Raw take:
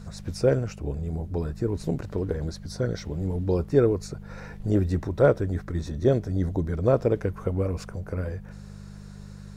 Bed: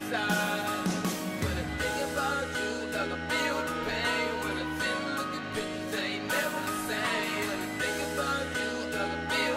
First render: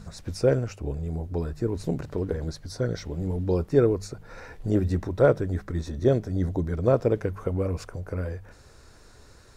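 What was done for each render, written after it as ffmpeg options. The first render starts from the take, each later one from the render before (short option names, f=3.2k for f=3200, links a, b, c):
-af "bandreject=f=50:t=h:w=4,bandreject=f=100:t=h:w=4,bandreject=f=150:t=h:w=4,bandreject=f=200:t=h:w=4"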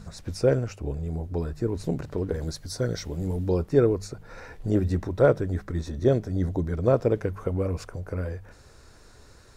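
-filter_complex "[0:a]asettb=1/sr,asplit=3[a][b][c];[a]atrim=end=2.344[d];[b]atrim=start=2.34:end=3.49,asetpts=PTS-STARTPTS,afade=t=in:d=0.004:c=qsin,afade=t=out:st=1.146:d=0.004:c=qsin,highshelf=f=5.3k:g=9.5[e];[c]atrim=start=3.486[f];[d][e]acrossfade=d=0.004:c1=hsin:c2=qsin[g];[g][f]acrossfade=d=0.004:c1=qsin:c2=hsin"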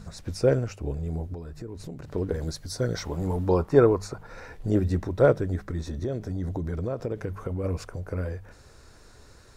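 -filter_complex "[0:a]asettb=1/sr,asplit=3[a][b][c];[a]atrim=end=1.344[d];[b]atrim=start=1.34:end=2.14,asetpts=PTS-STARTPTS,afade=t=in:d=0.004:c=qsin,afade=t=out:st=0.796:d=0.004:c=qsin,acompressor=threshold=-36dB:ratio=4:attack=3.2:release=140:knee=1:detection=peak[e];[c]atrim=start=2.136[f];[d][e]acrossfade=d=0.004:c1=hsin:c2=qsin[g];[g][f]acrossfade=d=0.004:c1=qsin:c2=hsin,asettb=1/sr,asplit=3[h][i][j];[h]atrim=end=2.954[k];[i]atrim=start=2.95:end=4.27,asetpts=PTS-STARTPTS,afade=t=in:d=0.004:c=qsin,afade=t=out:st=1.316:d=0.004:c=qsin,equalizer=f=1k:w=1.1:g=11.5[l];[j]atrim=start=4.266[m];[k][l]acrossfade=d=0.004:c1=hsin:c2=qsin[n];[n][m]acrossfade=d=0.004:c1=qsin:c2=hsin,asettb=1/sr,asplit=3[o][p][q];[o]atrim=end=5.554[r];[p]atrim=start=5.55:end=7.64,asetpts=PTS-STARTPTS,afade=t=in:d=0.004:c=qsin,afade=t=out:st=2.086:d=0.004:c=qsin,acompressor=threshold=-25dB:ratio=12:attack=3.2:release=140:knee=1:detection=peak[s];[q]atrim=start=7.636[t];[r][s]acrossfade=d=0.004:c1=hsin:c2=qsin[u];[u][t]acrossfade=d=0.004:c1=qsin:c2=hsin"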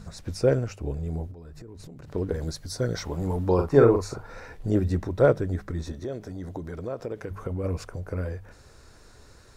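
-filter_complex "[0:a]asettb=1/sr,asplit=3[a][b][c];[a]atrim=end=1.314[d];[b]atrim=start=1.31:end=2.15,asetpts=PTS-STARTPTS,afade=t=in:d=0.004:c=qsin,afade=t=out:st=0.836:d=0.004:c=qsin,acompressor=threshold=-39dB:ratio=12:attack=3.2:release=140:knee=1:detection=peak[e];[c]atrim=start=2.146[f];[d][e]acrossfade=d=0.004:c1=hsin:c2=qsin[g];[g][f]acrossfade=d=0.004:c1=qsin:c2=hsin,asettb=1/sr,asplit=3[h][i][j];[h]atrim=end=3.544[k];[i]atrim=start=3.54:end=4.38,asetpts=PTS-STARTPTS,afade=t=in:d=0.004:c=qsin,afade=t=out:st=0.836:d=0.004:c=qsin,asplit=2[l][m];[m]adelay=43,volume=-4.5dB[n];[l][n]amix=inputs=2:normalize=0,atrim=end_sample=37044[o];[j]atrim=start=4.376[p];[k][o]acrossfade=d=0.004:c1=hsin:c2=qsin[q];[q][p]acrossfade=d=0.004:c1=qsin:c2=hsin,asettb=1/sr,asplit=3[r][s][t];[r]atrim=end=5.924[u];[s]atrim=start=5.92:end=7.31,asetpts=PTS-STARTPTS,afade=t=in:d=0.004:c=qsin,afade=t=out:st=1.386:d=0.004:c=qsin,lowshelf=f=210:g=-9.5[v];[t]atrim=start=7.306[w];[u][v]acrossfade=d=0.004:c1=hsin:c2=qsin[x];[x][w]acrossfade=d=0.004:c1=qsin:c2=hsin"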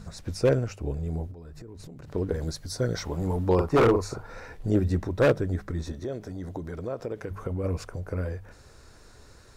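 -af "aeval=exprs='0.224*(abs(mod(val(0)/0.224+3,4)-2)-1)':c=same"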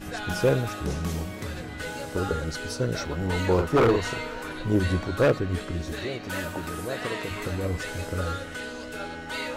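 -filter_complex "[1:a]volume=-4dB[a];[0:a][a]amix=inputs=2:normalize=0"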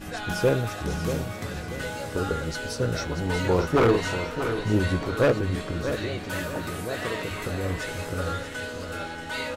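-filter_complex "[0:a]asplit=2[a][b];[b]adelay=18,volume=-12dB[c];[a][c]amix=inputs=2:normalize=0,aecho=1:1:636|1272|1908|2544:0.355|0.142|0.0568|0.0227"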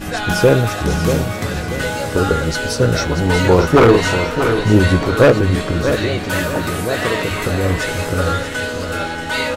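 -af "volume=11.5dB,alimiter=limit=-1dB:level=0:latency=1"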